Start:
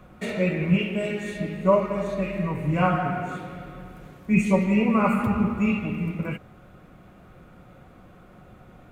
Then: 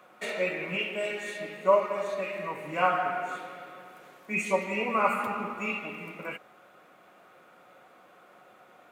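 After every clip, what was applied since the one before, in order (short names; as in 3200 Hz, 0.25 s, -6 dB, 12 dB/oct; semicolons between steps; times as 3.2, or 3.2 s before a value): HPF 540 Hz 12 dB/oct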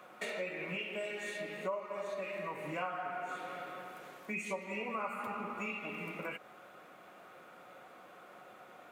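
compressor 4:1, threshold -39 dBFS, peak gain reduction 18.5 dB; gain +1 dB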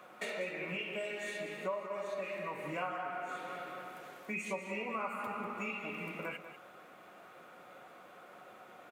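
echo 0.193 s -11.5 dB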